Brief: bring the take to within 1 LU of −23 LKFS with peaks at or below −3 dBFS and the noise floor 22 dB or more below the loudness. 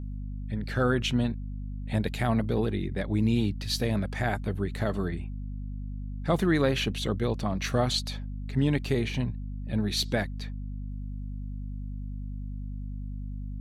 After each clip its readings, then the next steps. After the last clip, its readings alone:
mains hum 50 Hz; hum harmonics up to 250 Hz; level of the hum −33 dBFS; integrated loudness −30.0 LKFS; sample peak −13.0 dBFS; target loudness −23.0 LKFS
→ mains-hum notches 50/100/150/200/250 Hz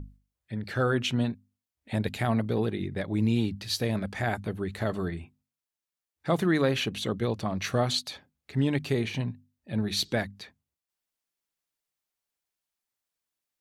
mains hum none found; integrated loudness −29.5 LKFS; sample peak −13.0 dBFS; target loudness −23.0 LKFS
→ level +6.5 dB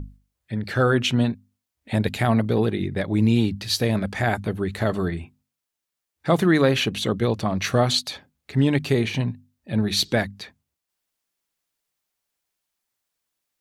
integrated loudness −23.0 LKFS; sample peak −6.5 dBFS; background noise floor −84 dBFS

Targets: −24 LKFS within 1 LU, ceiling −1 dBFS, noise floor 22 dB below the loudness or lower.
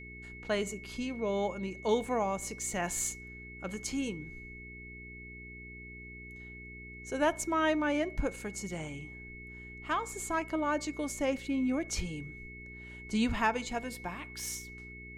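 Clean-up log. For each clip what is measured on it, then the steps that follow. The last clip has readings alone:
mains hum 60 Hz; hum harmonics up to 420 Hz; level of the hum −48 dBFS; interfering tone 2,200 Hz; level of the tone −47 dBFS; integrated loudness −34.0 LKFS; sample peak −15.5 dBFS; target loudness −24.0 LKFS
→ hum removal 60 Hz, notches 7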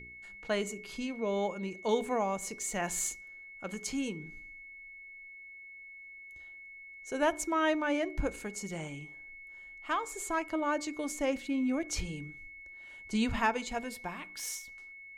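mains hum none found; interfering tone 2,200 Hz; level of the tone −47 dBFS
→ notch filter 2,200 Hz, Q 30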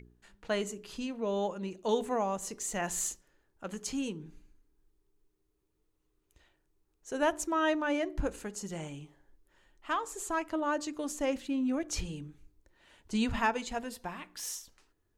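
interfering tone none found; integrated loudness −34.0 LKFS; sample peak −15.5 dBFS; target loudness −24.0 LKFS
→ level +10 dB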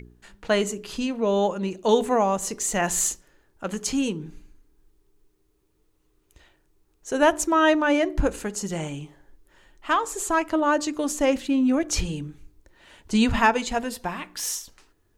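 integrated loudness −24.0 LKFS; sample peak −5.5 dBFS; background noise floor −67 dBFS

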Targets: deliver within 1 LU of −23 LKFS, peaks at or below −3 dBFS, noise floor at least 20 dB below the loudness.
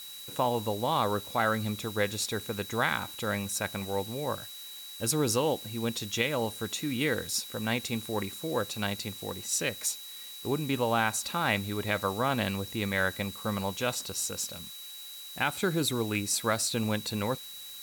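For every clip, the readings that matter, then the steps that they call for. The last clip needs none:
interfering tone 3,900 Hz; level of the tone −44 dBFS; background noise floor −44 dBFS; target noise floor −51 dBFS; integrated loudness −30.5 LKFS; sample peak −12.5 dBFS; target loudness −23.0 LKFS
→ notch filter 3,900 Hz, Q 30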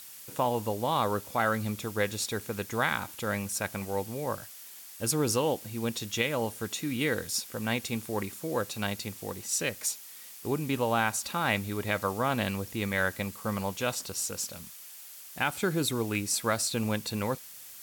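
interfering tone none found; background noise floor −47 dBFS; target noise floor −51 dBFS
→ broadband denoise 6 dB, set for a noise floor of −47 dBFS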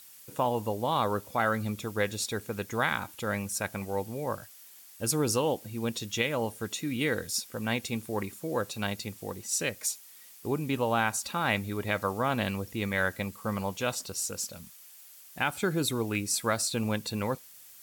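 background noise floor −52 dBFS; integrated loudness −31.0 LKFS; sample peak −13.0 dBFS; target loudness −23.0 LKFS
→ level +8 dB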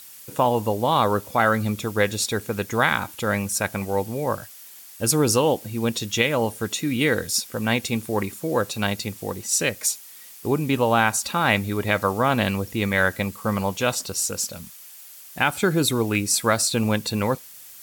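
integrated loudness −23.0 LKFS; sample peak −5.0 dBFS; background noise floor −44 dBFS

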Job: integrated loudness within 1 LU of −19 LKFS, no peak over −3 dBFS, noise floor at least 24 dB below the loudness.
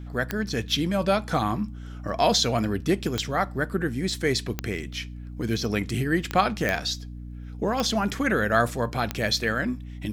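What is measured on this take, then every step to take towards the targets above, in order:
number of clicks 7; mains hum 60 Hz; hum harmonics up to 300 Hz; level of the hum −35 dBFS; integrated loudness −26.0 LKFS; sample peak −7.0 dBFS; target loudness −19.0 LKFS
→ click removal
mains-hum notches 60/120/180/240/300 Hz
level +7 dB
brickwall limiter −3 dBFS

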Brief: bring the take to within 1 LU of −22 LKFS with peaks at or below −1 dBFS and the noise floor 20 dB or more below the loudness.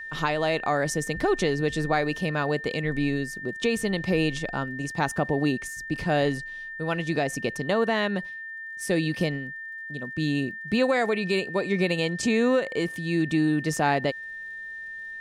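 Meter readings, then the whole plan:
crackle rate 29 per second; interfering tone 1,800 Hz; level of the tone −35 dBFS; integrated loudness −26.5 LKFS; sample peak −12.0 dBFS; target loudness −22.0 LKFS
→ click removal
notch filter 1,800 Hz, Q 30
level +4.5 dB

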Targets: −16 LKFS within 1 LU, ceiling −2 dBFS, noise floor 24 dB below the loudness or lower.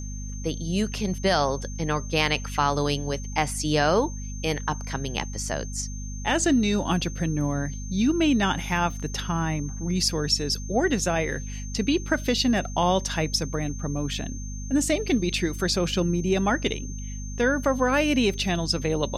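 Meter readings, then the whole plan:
mains hum 50 Hz; hum harmonics up to 250 Hz; level of the hum −31 dBFS; interfering tone 6,300 Hz; level of the tone −41 dBFS; integrated loudness −25.5 LKFS; sample peak −8.5 dBFS; target loudness −16.0 LKFS
→ hum removal 50 Hz, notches 5
notch filter 6,300 Hz, Q 30
level +9.5 dB
brickwall limiter −2 dBFS

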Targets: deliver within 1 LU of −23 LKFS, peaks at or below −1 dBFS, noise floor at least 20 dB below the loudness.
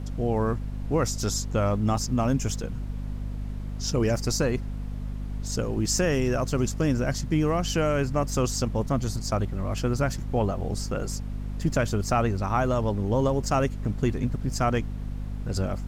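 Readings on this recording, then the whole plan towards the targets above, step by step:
mains hum 50 Hz; hum harmonics up to 250 Hz; level of the hum −30 dBFS; background noise floor −34 dBFS; target noise floor −47 dBFS; integrated loudness −27.0 LKFS; sample peak −11.0 dBFS; target loudness −23.0 LKFS
→ mains-hum notches 50/100/150/200/250 Hz
noise reduction from a noise print 13 dB
level +4 dB

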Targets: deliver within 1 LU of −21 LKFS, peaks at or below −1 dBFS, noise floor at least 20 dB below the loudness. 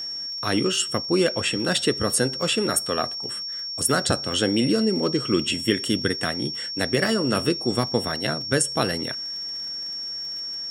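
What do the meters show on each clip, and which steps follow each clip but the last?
crackle rate 31 per second; interfering tone 5,500 Hz; level of the tone −29 dBFS; integrated loudness −23.5 LKFS; sample peak −6.0 dBFS; target loudness −21.0 LKFS
→ click removal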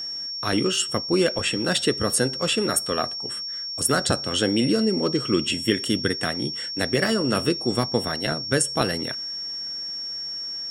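crackle rate 0.65 per second; interfering tone 5,500 Hz; level of the tone −29 dBFS
→ notch filter 5,500 Hz, Q 30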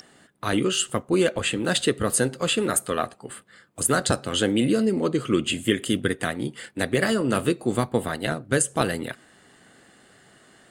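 interfering tone none found; integrated loudness −24.0 LKFS; sample peak −5.0 dBFS; target loudness −21.0 LKFS
→ level +3 dB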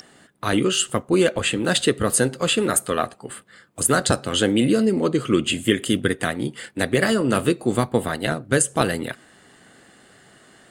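integrated loudness −21.0 LKFS; sample peak −2.0 dBFS; background noise floor −53 dBFS

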